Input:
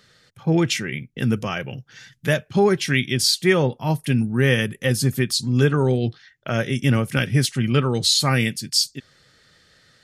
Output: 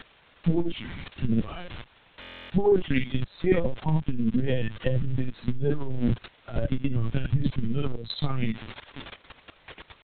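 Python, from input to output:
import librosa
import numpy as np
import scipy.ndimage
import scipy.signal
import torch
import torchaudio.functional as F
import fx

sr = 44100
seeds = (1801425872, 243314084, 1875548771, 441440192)

p1 = fx.bin_expand(x, sr, power=2.0)
p2 = fx.low_shelf(p1, sr, hz=440.0, db=12.0)
p3 = p2 + fx.room_early_taps(p2, sr, ms=(46, 63), db=(-4.5, -5.0), dry=0)
p4 = fx.dynamic_eq(p3, sr, hz=1500.0, q=3.0, threshold_db=-42.0, ratio=4.0, max_db=-7)
p5 = fx.dmg_crackle(p4, sr, seeds[0], per_s=460.0, level_db=-22.0)
p6 = fx.level_steps(p5, sr, step_db=19)
p7 = fx.lpc_vocoder(p6, sr, seeds[1], excitation='pitch_kept', order=16)
p8 = fx.buffer_glitch(p7, sr, at_s=(2.2,), block=1024, repeats=12)
p9 = fx.transformer_sat(p8, sr, knee_hz=67.0)
y = p9 * 10.0 ** (2.0 / 20.0)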